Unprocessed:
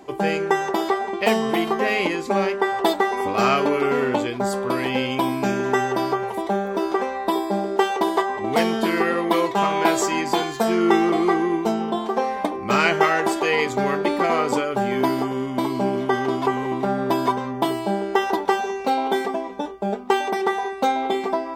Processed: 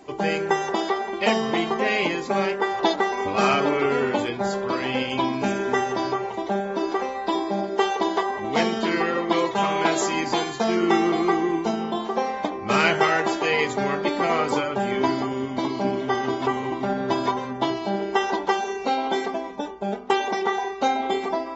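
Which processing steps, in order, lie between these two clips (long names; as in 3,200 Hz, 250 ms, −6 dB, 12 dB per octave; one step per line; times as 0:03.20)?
high-shelf EQ 3,200 Hz +3.5 dB
hum removal 62.56 Hz, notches 30
level −2.5 dB
AAC 24 kbit/s 48,000 Hz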